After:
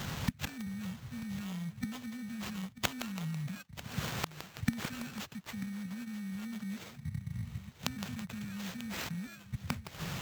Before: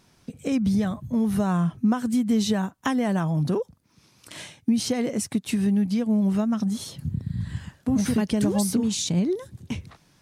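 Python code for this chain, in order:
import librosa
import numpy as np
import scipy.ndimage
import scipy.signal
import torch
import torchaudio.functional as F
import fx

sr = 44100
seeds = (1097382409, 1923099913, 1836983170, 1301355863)

p1 = fx.bit_reversed(x, sr, seeds[0], block=16)
p2 = fx.over_compress(p1, sr, threshold_db=-25.0, ratio=-0.5)
p3 = p1 + F.gain(torch.from_numpy(p2), 2.5).numpy()
p4 = fx.gate_flip(p3, sr, shuts_db=-24.0, range_db=-33)
p5 = scipy.signal.sosfilt(scipy.signal.cheby2(4, 50, [370.0, 2600.0], 'bandstop', fs=sr, output='sos'), p4)
p6 = fx.peak_eq(p5, sr, hz=250.0, db=14.0, octaves=0.68)
p7 = p6 + fx.echo_single(p6, sr, ms=941, db=-15.0, dry=0)
p8 = fx.sample_hold(p7, sr, seeds[1], rate_hz=10000.0, jitter_pct=0)
p9 = scipy.signal.sosfilt(scipy.signal.butter(2, 41.0, 'highpass', fs=sr, output='sos'), p8)
p10 = fx.echo_crushed(p9, sr, ms=164, feedback_pct=80, bits=7, wet_db=-7)
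y = F.gain(torch.from_numpy(p10), 13.0).numpy()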